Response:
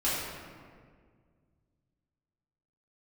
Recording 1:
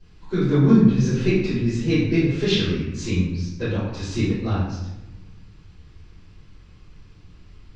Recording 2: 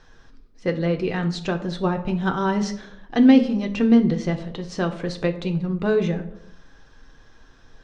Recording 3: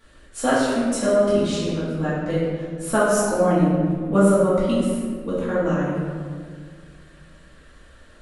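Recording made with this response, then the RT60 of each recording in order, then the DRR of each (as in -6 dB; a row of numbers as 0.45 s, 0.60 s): 3; 1.0 s, 0.70 s, 1.9 s; -13.0 dB, 4.5 dB, -10.5 dB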